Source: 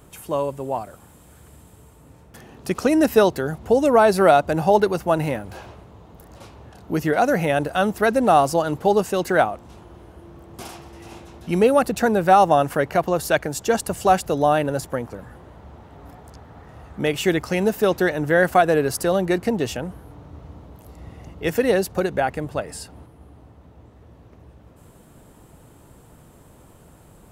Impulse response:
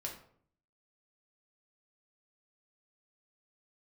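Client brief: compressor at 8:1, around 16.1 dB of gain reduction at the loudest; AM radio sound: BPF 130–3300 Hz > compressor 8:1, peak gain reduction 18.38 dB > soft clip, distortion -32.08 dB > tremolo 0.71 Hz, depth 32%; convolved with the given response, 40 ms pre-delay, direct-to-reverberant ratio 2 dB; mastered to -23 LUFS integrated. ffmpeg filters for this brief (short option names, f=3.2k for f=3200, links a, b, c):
-filter_complex "[0:a]acompressor=threshold=-27dB:ratio=8,asplit=2[a][b];[1:a]atrim=start_sample=2205,adelay=40[c];[b][c]afir=irnorm=-1:irlink=0,volume=-1.5dB[d];[a][d]amix=inputs=2:normalize=0,highpass=130,lowpass=3.3k,acompressor=threshold=-41dB:ratio=8,asoftclip=threshold=-27.5dB,tremolo=f=0.71:d=0.32,volume=24dB"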